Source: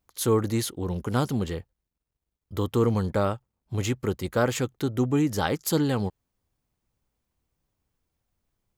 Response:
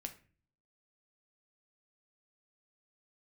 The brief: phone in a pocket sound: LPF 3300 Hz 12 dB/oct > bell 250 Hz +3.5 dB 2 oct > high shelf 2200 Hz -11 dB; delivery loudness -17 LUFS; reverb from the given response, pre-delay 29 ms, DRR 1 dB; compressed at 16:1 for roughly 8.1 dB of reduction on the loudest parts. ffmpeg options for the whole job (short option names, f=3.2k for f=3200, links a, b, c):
-filter_complex "[0:a]acompressor=threshold=-26dB:ratio=16,asplit=2[a][b];[1:a]atrim=start_sample=2205,adelay=29[c];[b][c]afir=irnorm=-1:irlink=0,volume=2dB[d];[a][d]amix=inputs=2:normalize=0,lowpass=3.3k,equalizer=f=250:t=o:w=2:g=3.5,highshelf=f=2.2k:g=-11,volume=10.5dB"